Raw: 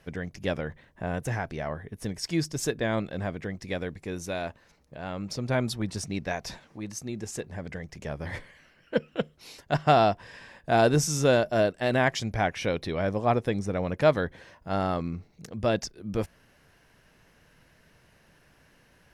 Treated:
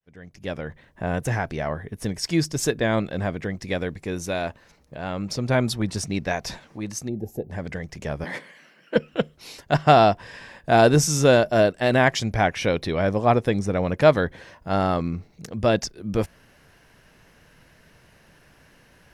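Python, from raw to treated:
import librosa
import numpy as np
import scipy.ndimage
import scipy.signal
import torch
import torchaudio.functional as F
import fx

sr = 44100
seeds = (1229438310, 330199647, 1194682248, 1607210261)

y = fx.fade_in_head(x, sr, length_s=1.13)
y = fx.spec_box(y, sr, start_s=7.09, length_s=0.42, low_hz=870.0, high_hz=11000.0, gain_db=-23)
y = fx.steep_highpass(y, sr, hz=160.0, slope=36, at=(8.24, 8.96))
y = y * 10.0 ** (5.5 / 20.0)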